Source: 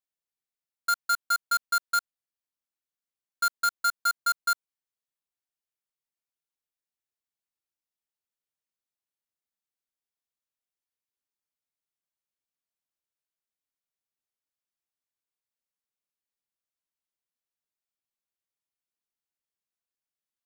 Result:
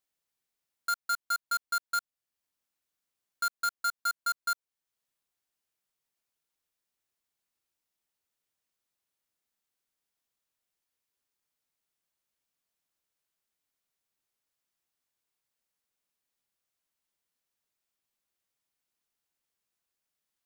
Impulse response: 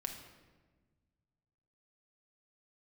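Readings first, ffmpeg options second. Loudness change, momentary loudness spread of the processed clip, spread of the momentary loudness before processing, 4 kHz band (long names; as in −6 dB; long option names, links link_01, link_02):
−4.5 dB, 3 LU, 3 LU, −4.5 dB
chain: -af "alimiter=level_in=9.5dB:limit=-24dB:level=0:latency=1:release=498,volume=-9.5dB,volume=6.5dB"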